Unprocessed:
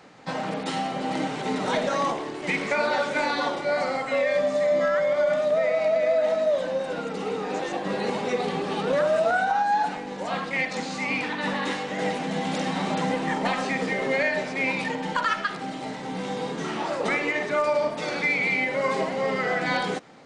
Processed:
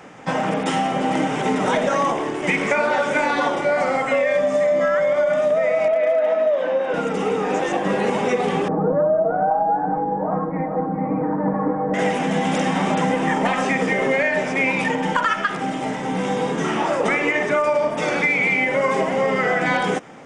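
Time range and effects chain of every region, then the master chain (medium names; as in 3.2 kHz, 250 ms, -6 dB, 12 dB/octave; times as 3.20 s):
5.88–6.94 s: three-band isolator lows -23 dB, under 240 Hz, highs -20 dB, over 4.1 kHz + hard clipper -16.5 dBFS
8.68–11.94 s: Gaussian low-pass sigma 8.3 samples + comb 6.4 ms, depth 76% + delay 415 ms -10 dB
whole clip: peaking EQ 4.3 kHz -14 dB 0.32 oct; band-stop 3.9 kHz, Q 23; compression, threshold -24 dBFS; trim +8.5 dB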